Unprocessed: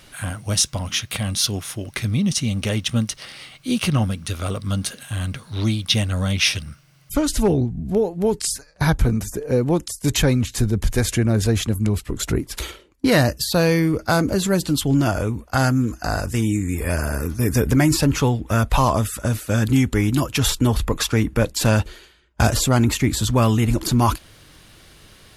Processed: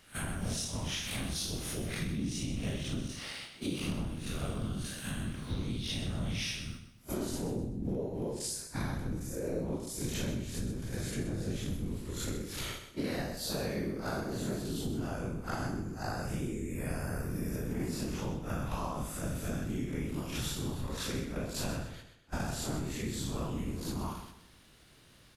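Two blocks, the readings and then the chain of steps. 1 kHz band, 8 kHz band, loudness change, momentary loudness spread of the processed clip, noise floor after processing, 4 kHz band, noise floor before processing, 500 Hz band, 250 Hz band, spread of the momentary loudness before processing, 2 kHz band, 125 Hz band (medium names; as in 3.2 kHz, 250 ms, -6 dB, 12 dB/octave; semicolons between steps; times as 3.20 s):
-17.0 dB, -15.0 dB, -16.0 dB, 3 LU, -58 dBFS, -15.0 dB, -50 dBFS, -16.0 dB, -15.5 dB, 9 LU, -16.0 dB, -17.0 dB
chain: spectral blur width 121 ms; gate -40 dBFS, range -11 dB; compression 12:1, threshold -33 dBFS, peak gain reduction 19 dB; whisper effect; feedback delay 127 ms, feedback 32%, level -10 dB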